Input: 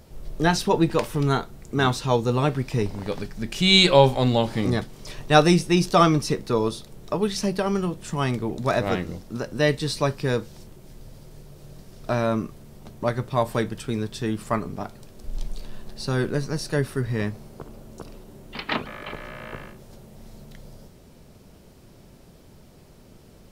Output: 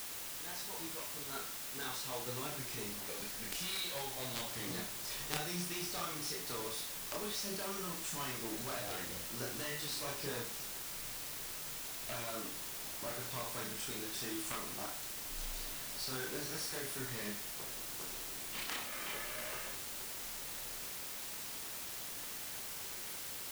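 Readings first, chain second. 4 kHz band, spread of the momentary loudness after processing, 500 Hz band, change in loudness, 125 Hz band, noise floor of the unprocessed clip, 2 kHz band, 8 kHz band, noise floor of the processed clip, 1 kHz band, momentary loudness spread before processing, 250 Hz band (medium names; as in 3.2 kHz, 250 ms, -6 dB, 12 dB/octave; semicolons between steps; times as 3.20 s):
-14.0 dB, 4 LU, -22.0 dB, -16.5 dB, -24.5 dB, -50 dBFS, -14.0 dB, -1.5 dB, -45 dBFS, -19.5 dB, 20 LU, -22.5 dB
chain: fade-in on the opening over 5.50 s; tilt EQ +3 dB/octave; compression 6:1, threshold -29 dBFS, peak gain reduction 17.5 dB; flutter echo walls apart 5.8 m, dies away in 0.4 s; Chebyshev shaper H 3 -7 dB, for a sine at -12.5 dBFS; chorus voices 6, 0.8 Hz, delay 27 ms, depth 4.2 ms; word length cut 8-bit, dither triangular; trim +3.5 dB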